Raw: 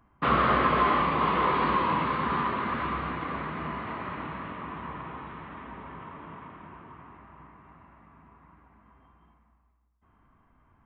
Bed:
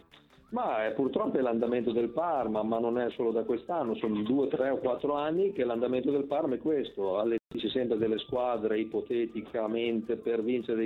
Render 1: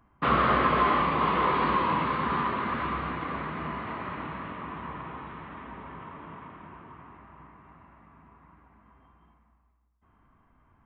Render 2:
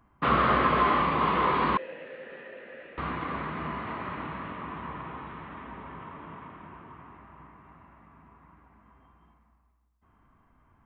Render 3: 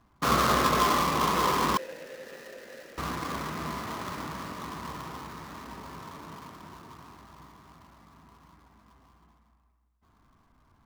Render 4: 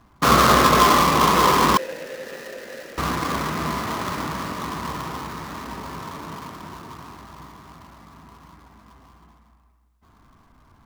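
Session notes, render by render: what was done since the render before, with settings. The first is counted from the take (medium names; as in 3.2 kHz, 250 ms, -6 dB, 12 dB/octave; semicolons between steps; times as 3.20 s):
no audible change
1.77–2.98 s: vowel filter e
dead-time distortion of 0.14 ms
trim +9 dB; peak limiter -3 dBFS, peak gain reduction 1 dB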